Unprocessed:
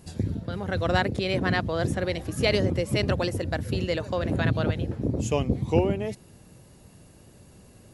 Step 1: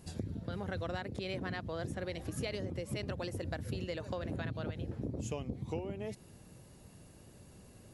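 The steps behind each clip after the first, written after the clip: compression 10:1, threshold -30 dBFS, peak gain reduction 15 dB; trim -4.5 dB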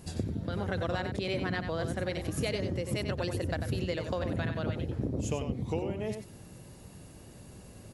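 echo from a far wall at 16 m, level -7 dB; trim +5.5 dB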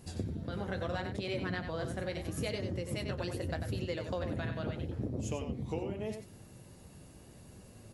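flange 0.77 Hz, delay 7.9 ms, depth 8.7 ms, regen -48%

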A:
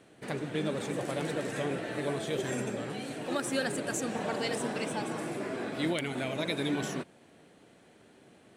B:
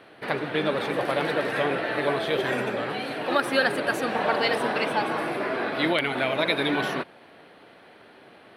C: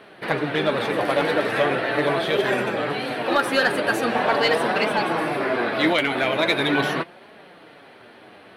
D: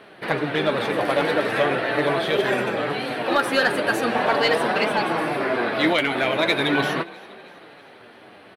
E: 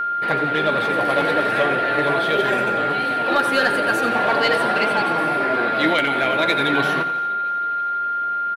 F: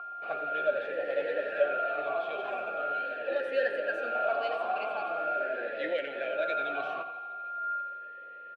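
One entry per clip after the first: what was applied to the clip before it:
FFT filter 190 Hz 0 dB, 870 Hz +11 dB, 1.3 kHz +12 dB, 4.5 kHz +7 dB, 7.3 kHz -14 dB, 11 kHz +3 dB; trim +1 dB
in parallel at -3 dB: hard clipper -17 dBFS, distortion -18 dB; on the sum: flange 0.41 Hz, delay 4.6 ms, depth 6.1 ms, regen +48%; trim +3.5 dB
frequency-shifting echo 323 ms, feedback 56%, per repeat +47 Hz, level -22 dB
feedback delay 87 ms, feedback 50%, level -12 dB; whistle 1.4 kHz -20 dBFS
talking filter a-e 0.42 Hz; trim -3 dB

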